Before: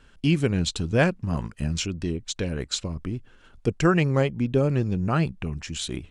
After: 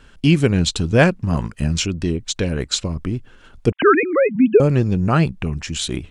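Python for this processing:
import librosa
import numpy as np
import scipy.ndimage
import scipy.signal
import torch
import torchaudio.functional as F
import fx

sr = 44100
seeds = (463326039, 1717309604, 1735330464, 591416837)

y = fx.sine_speech(x, sr, at=(3.72, 4.6))
y = F.gain(torch.from_numpy(y), 7.0).numpy()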